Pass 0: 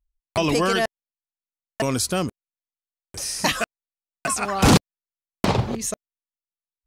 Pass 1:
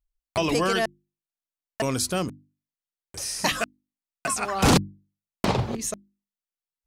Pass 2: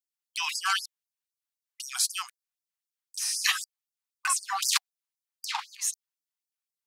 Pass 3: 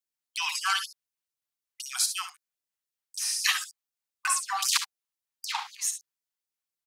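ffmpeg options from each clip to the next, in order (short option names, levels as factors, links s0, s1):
-af "bandreject=f=50:t=h:w=6,bandreject=f=100:t=h:w=6,bandreject=f=150:t=h:w=6,bandreject=f=200:t=h:w=6,bandreject=f=250:t=h:w=6,bandreject=f=300:t=h:w=6,bandreject=f=350:t=h:w=6,volume=0.75"
-af "afftfilt=real='re*gte(b*sr/1024,690*pow(4800/690,0.5+0.5*sin(2*PI*3.9*pts/sr)))':imag='im*gte(b*sr/1024,690*pow(4800/690,0.5+0.5*sin(2*PI*3.9*pts/sr)))':win_size=1024:overlap=0.75,volume=1.19"
-af "aecho=1:1:59|71:0.266|0.237"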